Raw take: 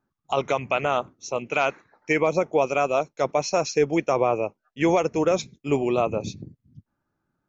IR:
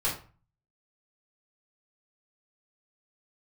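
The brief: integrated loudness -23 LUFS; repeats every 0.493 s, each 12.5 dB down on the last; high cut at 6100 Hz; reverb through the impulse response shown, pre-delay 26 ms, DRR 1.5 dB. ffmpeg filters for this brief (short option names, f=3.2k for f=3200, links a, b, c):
-filter_complex "[0:a]lowpass=6.1k,aecho=1:1:493|986|1479:0.237|0.0569|0.0137,asplit=2[a][b];[1:a]atrim=start_sample=2205,adelay=26[c];[b][c]afir=irnorm=-1:irlink=0,volume=-10dB[d];[a][d]amix=inputs=2:normalize=0,volume=-1dB"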